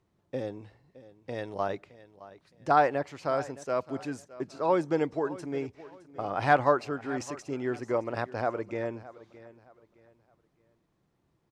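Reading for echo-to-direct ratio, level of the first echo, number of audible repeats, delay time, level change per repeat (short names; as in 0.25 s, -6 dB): -17.5 dB, -18.0 dB, 2, 0.616 s, -10.0 dB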